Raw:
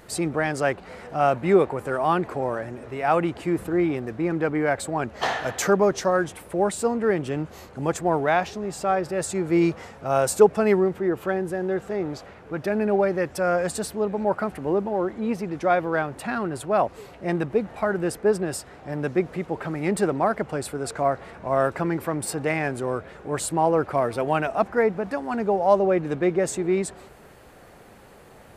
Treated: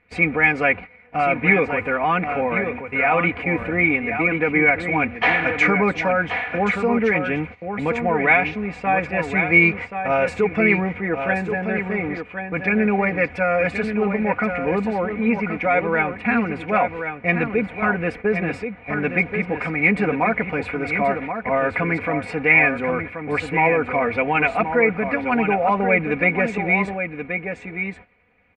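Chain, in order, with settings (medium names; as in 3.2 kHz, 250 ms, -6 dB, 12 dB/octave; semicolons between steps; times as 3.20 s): gate -36 dBFS, range -20 dB; peaking EQ 100 Hz +14.5 dB 0.77 oct; comb 4.1 ms, depth 83%; peak limiter -11.5 dBFS, peak gain reduction 10.5 dB; resonant low-pass 2.3 kHz, resonance Q 12; on a send: delay 1079 ms -7.5 dB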